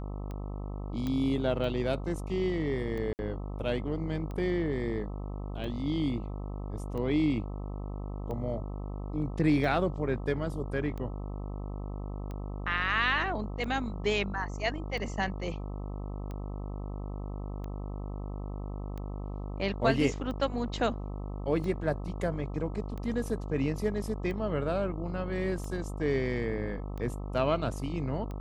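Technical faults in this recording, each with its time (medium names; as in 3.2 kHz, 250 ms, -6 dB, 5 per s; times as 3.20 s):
buzz 50 Hz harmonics 26 -37 dBFS
tick 45 rpm -28 dBFS
1.07 s: pop -21 dBFS
3.13–3.19 s: dropout 59 ms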